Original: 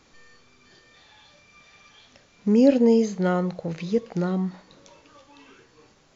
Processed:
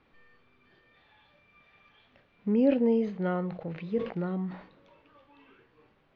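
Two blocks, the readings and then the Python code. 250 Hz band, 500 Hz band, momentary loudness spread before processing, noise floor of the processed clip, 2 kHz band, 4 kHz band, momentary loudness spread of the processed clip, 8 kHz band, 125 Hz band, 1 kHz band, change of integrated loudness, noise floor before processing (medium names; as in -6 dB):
-6.5 dB, -6.5 dB, 14 LU, -67 dBFS, -6.0 dB, under -10 dB, 15 LU, no reading, -6.5 dB, -6.5 dB, -6.5 dB, -59 dBFS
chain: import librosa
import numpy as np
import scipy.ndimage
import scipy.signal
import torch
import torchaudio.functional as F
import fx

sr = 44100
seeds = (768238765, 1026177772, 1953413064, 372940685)

y = scipy.signal.sosfilt(scipy.signal.butter(4, 3100.0, 'lowpass', fs=sr, output='sos'), x)
y = fx.sustainer(y, sr, db_per_s=110.0)
y = y * 10.0 ** (-7.0 / 20.0)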